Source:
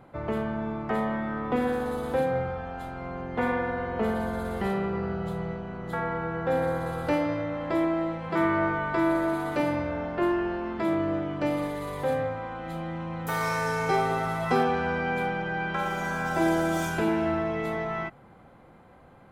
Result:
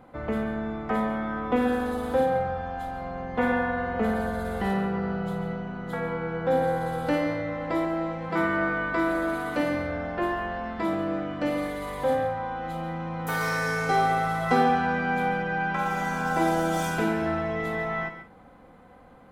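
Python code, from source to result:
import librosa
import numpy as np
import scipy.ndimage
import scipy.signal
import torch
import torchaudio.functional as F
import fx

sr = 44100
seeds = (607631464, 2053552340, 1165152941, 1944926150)

p1 = x + 0.44 * np.pad(x, (int(4.0 * sr / 1000.0), 0))[:len(x)]
y = p1 + fx.echo_multitap(p1, sr, ms=(56, 139, 182), db=(-10.5, -12.0, -19.5), dry=0)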